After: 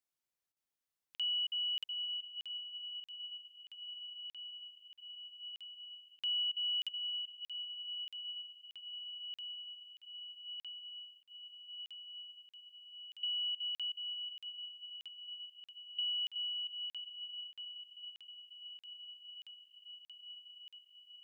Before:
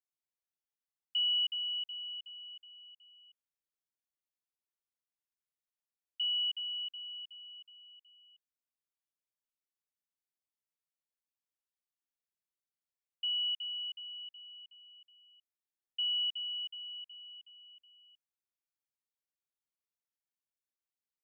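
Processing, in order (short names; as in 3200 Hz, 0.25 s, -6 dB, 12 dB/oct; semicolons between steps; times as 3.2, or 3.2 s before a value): compressor, threshold -36 dBFS, peak gain reduction 7 dB; diffused feedback echo 1.064 s, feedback 80%, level -9 dB; crackling interface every 0.63 s, samples 2048, zero, from 0.52; gain +2.5 dB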